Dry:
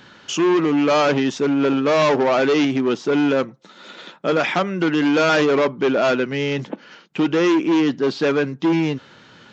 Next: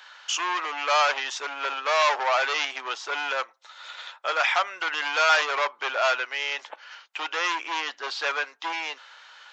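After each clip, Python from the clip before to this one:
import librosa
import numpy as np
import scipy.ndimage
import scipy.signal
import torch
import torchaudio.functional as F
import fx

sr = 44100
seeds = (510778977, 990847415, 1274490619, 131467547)

y = scipy.signal.sosfilt(scipy.signal.butter(4, 780.0, 'highpass', fs=sr, output='sos'), x)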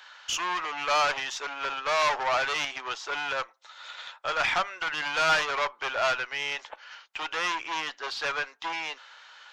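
y = fx.diode_clip(x, sr, knee_db=-17.5)
y = y * 10.0 ** (-1.5 / 20.0)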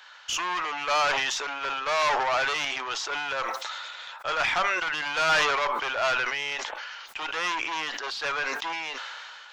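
y = fx.sustainer(x, sr, db_per_s=23.0)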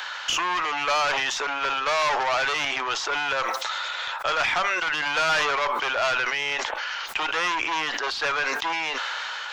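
y = fx.band_squash(x, sr, depth_pct=70)
y = y * 10.0 ** (2.0 / 20.0)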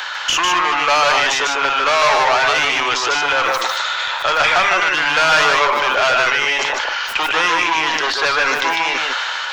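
y = x + 10.0 ** (-3.0 / 20.0) * np.pad(x, (int(151 * sr / 1000.0), 0))[:len(x)]
y = y * 10.0 ** (7.5 / 20.0)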